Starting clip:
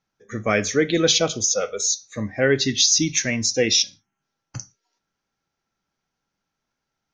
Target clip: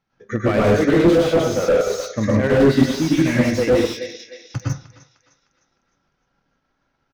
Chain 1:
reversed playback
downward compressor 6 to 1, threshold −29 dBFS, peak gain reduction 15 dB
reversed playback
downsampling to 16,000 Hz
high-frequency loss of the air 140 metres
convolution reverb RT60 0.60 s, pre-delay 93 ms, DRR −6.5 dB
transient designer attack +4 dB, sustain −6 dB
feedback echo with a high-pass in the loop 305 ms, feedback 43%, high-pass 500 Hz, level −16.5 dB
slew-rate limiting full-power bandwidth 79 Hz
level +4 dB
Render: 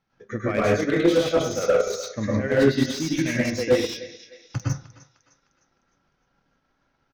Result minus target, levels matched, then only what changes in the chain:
downward compressor: peak gain reduction +8.5 dB
change: downward compressor 6 to 1, threshold −19 dBFS, peak gain reduction 6.5 dB

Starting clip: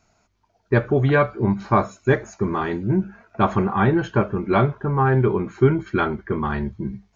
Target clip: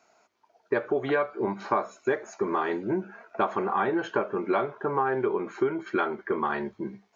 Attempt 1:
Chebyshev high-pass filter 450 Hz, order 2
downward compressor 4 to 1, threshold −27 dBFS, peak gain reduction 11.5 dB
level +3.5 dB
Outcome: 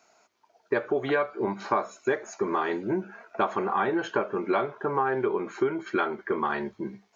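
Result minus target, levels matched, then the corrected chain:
8,000 Hz band +4.0 dB
Chebyshev high-pass filter 450 Hz, order 2
high-shelf EQ 3,300 Hz −5.5 dB
downward compressor 4 to 1, threshold −27 dBFS, peak gain reduction 11.5 dB
level +3.5 dB

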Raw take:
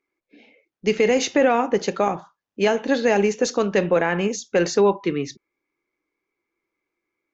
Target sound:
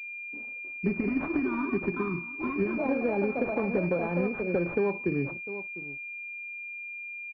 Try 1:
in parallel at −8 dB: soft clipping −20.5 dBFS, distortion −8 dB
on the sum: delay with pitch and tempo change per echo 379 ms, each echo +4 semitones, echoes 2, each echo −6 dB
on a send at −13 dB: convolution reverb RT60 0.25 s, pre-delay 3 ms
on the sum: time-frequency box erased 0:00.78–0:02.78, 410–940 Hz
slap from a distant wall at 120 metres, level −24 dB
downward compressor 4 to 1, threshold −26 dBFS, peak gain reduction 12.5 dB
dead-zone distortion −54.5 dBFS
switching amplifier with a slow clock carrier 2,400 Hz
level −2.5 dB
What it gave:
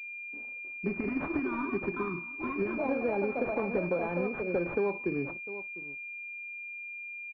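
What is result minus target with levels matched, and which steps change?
soft clipping: distortion +9 dB; 125 Hz band −3.0 dB
change: soft clipping −12 dBFS, distortion −18 dB
add after downward compressor: parametric band 85 Hz +9.5 dB 2.8 octaves

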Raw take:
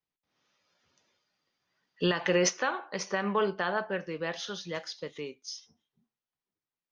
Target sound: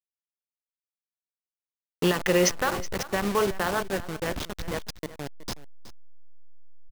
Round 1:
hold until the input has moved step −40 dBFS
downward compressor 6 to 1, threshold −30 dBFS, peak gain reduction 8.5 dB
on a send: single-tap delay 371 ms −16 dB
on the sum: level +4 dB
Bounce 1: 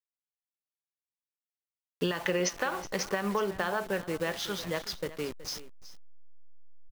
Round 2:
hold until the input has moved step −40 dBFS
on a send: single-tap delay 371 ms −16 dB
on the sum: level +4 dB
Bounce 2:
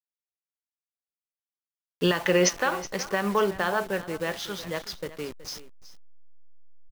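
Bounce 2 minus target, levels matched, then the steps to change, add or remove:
hold until the input has moved: distortion −10 dB
change: hold until the input has moved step −29 dBFS

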